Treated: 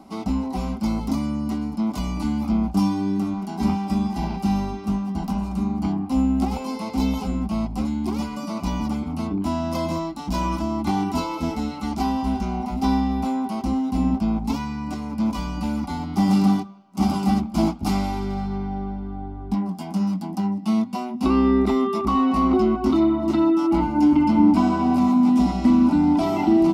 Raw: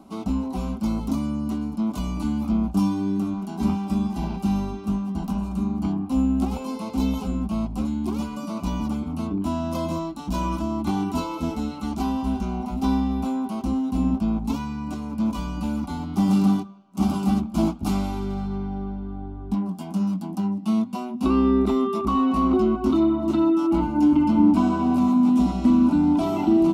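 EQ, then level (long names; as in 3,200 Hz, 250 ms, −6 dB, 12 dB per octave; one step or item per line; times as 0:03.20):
thirty-one-band graphic EQ 800 Hz +5 dB, 2,000 Hz +9 dB, 5,000 Hz +7 dB
+1.0 dB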